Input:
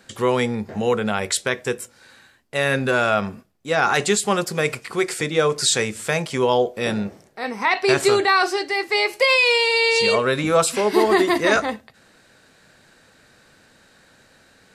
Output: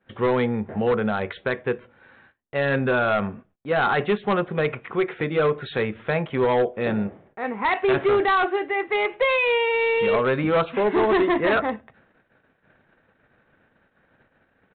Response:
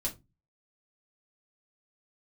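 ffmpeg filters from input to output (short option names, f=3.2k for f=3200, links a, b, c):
-af "lowpass=2k,agate=range=-21dB:threshold=-54dB:ratio=16:detection=peak,aresample=8000,asoftclip=type=hard:threshold=-15.5dB,aresample=44100"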